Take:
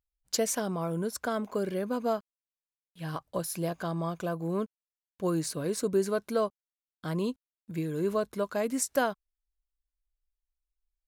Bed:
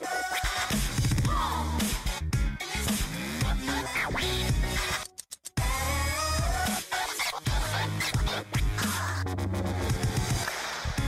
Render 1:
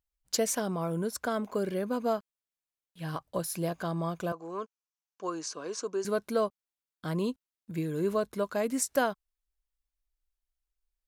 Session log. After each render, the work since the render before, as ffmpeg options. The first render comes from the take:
-filter_complex "[0:a]asettb=1/sr,asplit=3[s0][s1][s2];[s0]atrim=end=4.324[s3];[s1]atrim=start=4.32:end=6.05,asetpts=PTS-STARTPTS,afade=t=in:d=0.004:c=qsin,afade=t=out:st=1.726:d=0.004:c=qsin,highpass=480,equalizer=f=570:t=q:w=4:g=-5,equalizer=f=1100:t=q:w=4:g=4,equalizer=f=2000:t=q:w=4:g=-8,equalizer=f=3900:t=q:w=4:g=-7,equalizer=f=6100:t=q:w=4:g=7,lowpass=f=6600:w=0.5412,lowpass=f=6600:w=1.3066[s4];[s2]atrim=start=6.046[s5];[s3][s4]acrossfade=d=0.004:c1=hsin:c2=qsin[s6];[s6][s5]acrossfade=d=0.004:c1=qsin:c2=hsin"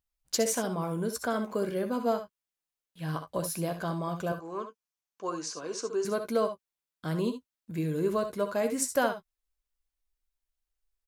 -filter_complex "[0:a]asplit=2[s0][s1];[s1]adelay=13,volume=0.282[s2];[s0][s2]amix=inputs=2:normalize=0,aecho=1:1:64|75:0.316|0.188"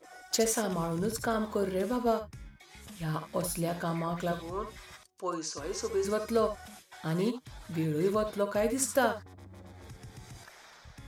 -filter_complex "[1:a]volume=0.1[s0];[0:a][s0]amix=inputs=2:normalize=0"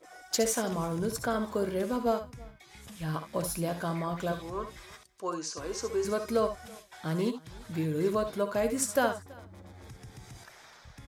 -af "aecho=1:1:330:0.0631"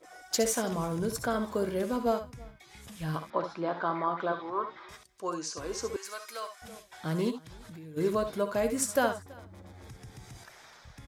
-filter_complex "[0:a]asettb=1/sr,asplit=3[s0][s1][s2];[s0]atrim=end=3.304[s3];[s1]atrim=start=3.3:end=4.89,asetpts=PTS-STARTPTS,afade=t=in:d=0.004:c=qsin,afade=t=out:st=1.586:d=0.004:c=qsin,highpass=280,equalizer=f=340:t=q:w=4:g=4,equalizer=f=910:t=q:w=4:g=9,equalizer=f=1300:t=q:w=4:g=9,equalizer=f=2700:t=q:w=4:g=-7,lowpass=f=3800:w=0.5412,lowpass=f=3800:w=1.3066[s4];[s2]atrim=start=4.886[s5];[s3][s4]acrossfade=d=0.004:c1=hsin:c2=qsin[s6];[s6][s5]acrossfade=d=0.004:c1=qsin:c2=hsin,asettb=1/sr,asplit=3[s7][s8][s9];[s7]atrim=end=5.964[s10];[s8]atrim=start=5.96:end=6.62,asetpts=PTS-STARTPTS,afade=t=in:d=0.004:c=qsin,afade=t=out:st=0.656:d=0.004:c=qsin,highpass=1300[s11];[s9]atrim=start=6.616[s12];[s10][s11]acrossfade=d=0.004:c1=hsin:c2=qsin[s13];[s13][s12]acrossfade=d=0.004:c1=qsin:c2=hsin,asplit=3[s14][s15][s16];[s14]afade=t=out:st=7.41:d=0.02[s17];[s15]acompressor=threshold=0.00708:ratio=10:attack=3.2:release=140:knee=1:detection=peak,afade=t=in:st=7.41:d=0.02,afade=t=out:st=7.96:d=0.02[s18];[s16]afade=t=in:st=7.96:d=0.02[s19];[s17][s18][s19]amix=inputs=3:normalize=0"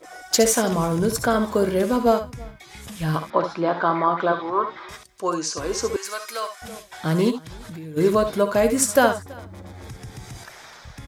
-af "volume=3.16"

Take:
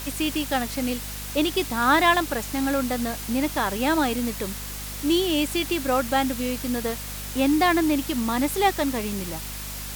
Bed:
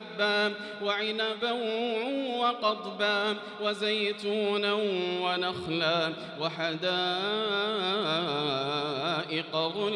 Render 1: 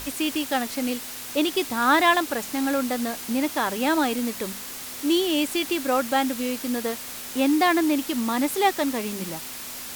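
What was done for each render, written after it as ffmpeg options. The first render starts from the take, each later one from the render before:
-af "bandreject=f=50:t=h:w=6,bandreject=f=100:t=h:w=6,bandreject=f=150:t=h:w=6,bandreject=f=200:t=h:w=6"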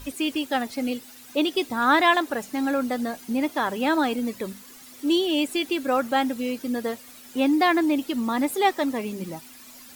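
-af "afftdn=nr=13:nf=-36"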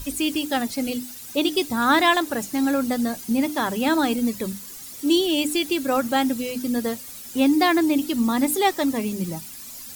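-af "bass=f=250:g=10,treble=f=4000:g=9,bandreject=f=50:t=h:w=6,bandreject=f=100:t=h:w=6,bandreject=f=150:t=h:w=6,bandreject=f=200:t=h:w=6,bandreject=f=250:t=h:w=6,bandreject=f=300:t=h:w=6"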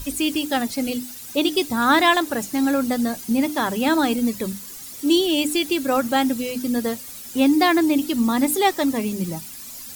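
-af "volume=1.19"

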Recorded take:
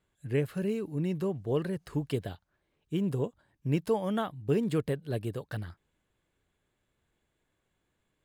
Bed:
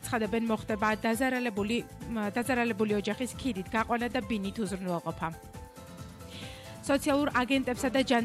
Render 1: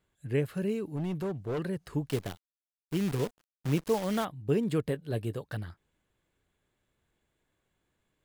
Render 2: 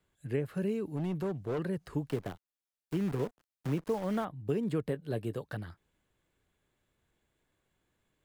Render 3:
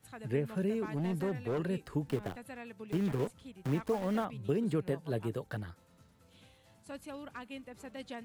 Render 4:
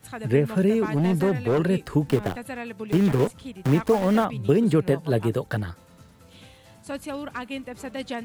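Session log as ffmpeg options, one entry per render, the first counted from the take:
-filter_complex "[0:a]asettb=1/sr,asplit=3[s0][s1][s2];[s0]atrim=end=0.884[s3];[s1]atrim=start=0.88:end=1.59,asetpts=PTS-STARTPTS,afade=t=in:d=0.004:c=qsin,afade=t=out:st=0.706:d=0.004:c=qsin,asoftclip=type=hard:threshold=0.0355[s4];[s2]atrim=start=1.586[s5];[s3][s4]acrossfade=d=0.004:c1=hsin:c2=qsin[s6];[s6][s5]acrossfade=d=0.004:c1=qsin:c2=hsin,asettb=1/sr,asplit=3[s7][s8][s9];[s7]atrim=end=2.094[s10];[s8]atrim=start=2.09:end=4.25,asetpts=PTS-STARTPTS,afade=t=in:d=0.004:c=qsin,afade=t=out:st=2.156:d=0.004:c=qsin,acrusher=bits=7:dc=4:mix=0:aa=0.000001[s11];[s9]atrim=start=4.246[s12];[s10][s11]acrossfade=d=0.004:c1=hsin:c2=qsin[s13];[s13][s12]acrossfade=d=0.004:c1=qsin:c2=hsin,asettb=1/sr,asplit=3[s14][s15][s16];[s14]atrim=end=4.864[s17];[s15]atrim=start=4.86:end=5.38,asetpts=PTS-STARTPTS,afade=t=in:d=0.004:c=qsin,afade=t=out:st=0.516:d=0.004:c=qsin,asplit=2[s18][s19];[s19]adelay=18,volume=0.211[s20];[s18][s20]amix=inputs=2:normalize=0,atrim=end_sample=22932[s21];[s16]atrim=start=5.376[s22];[s17][s21]acrossfade=d=0.004:c1=hsin:c2=qsin[s23];[s23][s22]acrossfade=d=0.004:c1=qsin:c2=hsin"
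-filter_complex "[0:a]acrossover=split=130|2000[s0][s1][s2];[s0]acompressor=threshold=0.00501:ratio=4[s3];[s1]acompressor=threshold=0.0398:ratio=4[s4];[s2]acompressor=threshold=0.00178:ratio=4[s5];[s3][s4][s5]amix=inputs=3:normalize=0"
-filter_complex "[1:a]volume=0.126[s0];[0:a][s0]amix=inputs=2:normalize=0"
-af "volume=3.98"

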